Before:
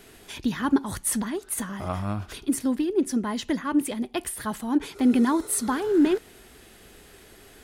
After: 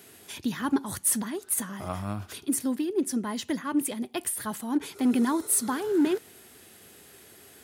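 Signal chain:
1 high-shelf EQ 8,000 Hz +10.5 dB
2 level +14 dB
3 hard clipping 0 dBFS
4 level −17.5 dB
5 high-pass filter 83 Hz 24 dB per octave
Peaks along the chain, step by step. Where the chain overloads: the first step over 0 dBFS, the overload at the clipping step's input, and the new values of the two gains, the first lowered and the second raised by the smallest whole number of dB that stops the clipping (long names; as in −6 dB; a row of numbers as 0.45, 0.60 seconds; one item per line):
−7.5, +6.5, 0.0, −17.5, −15.0 dBFS
step 2, 6.5 dB
step 2 +7 dB, step 4 −10.5 dB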